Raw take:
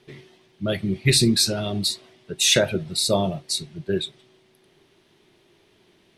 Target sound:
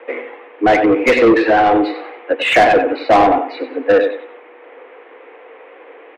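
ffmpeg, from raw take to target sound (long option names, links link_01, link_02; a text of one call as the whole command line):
ffmpeg -i in.wav -filter_complex "[0:a]aecho=1:1:94|188|282:0.282|0.0733|0.0191,highpass=frequency=200:width_type=q:width=0.5412,highpass=frequency=200:width_type=q:width=1.307,lowpass=frequency=2300:width_type=q:width=0.5176,lowpass=frequency=2300:width_type=q:width=0.7071,lowpass=frequency=2300:width_type=q:width=1.932,afreqshift=110,asplit=2[link_01][link_02];[link_02]highpass=frequency=720:poles=1,volume=25dB,asoftclip=type=tanh:threshold=-8.5dB[link_03];[link_01][link_03]amix=inputs=2:normalize=0,lowpass=frequency=1800:poles=1,volume=-6dB,volume=6.5dB" out.wav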